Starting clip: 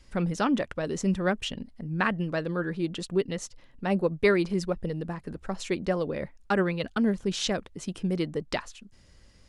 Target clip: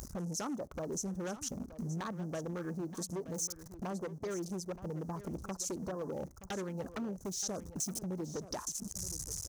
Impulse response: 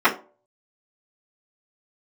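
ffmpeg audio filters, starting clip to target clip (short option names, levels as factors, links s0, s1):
-filter_complex "[0:a]aeval=exprs='val(0)+0.5*0.0178*sgn(val(0))':c=same,aexciter=amount=7.7:drive=6:freq=4600,afwtdn=0.0224,alimiter=limit=0.211:level=0:latency=1:release=194,highshelf=f=1700:t=q:w=1.5:g=-11,acompressor=threshold=0.0141:ratio=5,aeval=exprs='0.0224*(abs(mod(val(0)/0.0224+3,4)-2)-1)':c=same,acompressor=mode=upward:threshold=0.00794:ratio=2.5,highpass=51,equalizer=f=6100:t=o:w=0.36:g=9.5,aecho=1:1:924:0.2,asplit=2[s0][s1];[1:a]atrim=start_sample=2205[s2];[s1][s2]afir=irnorm=-1:irlink=0,volume=0.00668[s3];[s0][s3]amix=inputs=2:normalize=0"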